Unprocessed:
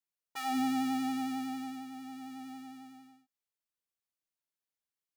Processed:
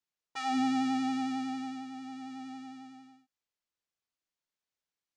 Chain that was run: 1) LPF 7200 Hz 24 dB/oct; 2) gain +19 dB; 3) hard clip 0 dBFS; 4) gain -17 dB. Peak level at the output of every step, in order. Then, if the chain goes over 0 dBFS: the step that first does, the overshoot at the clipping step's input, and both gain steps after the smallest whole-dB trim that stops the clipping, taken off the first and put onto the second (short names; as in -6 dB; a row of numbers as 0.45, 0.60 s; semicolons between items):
-22.0, -3.0, -3.0, -20.0 dBFS; no overload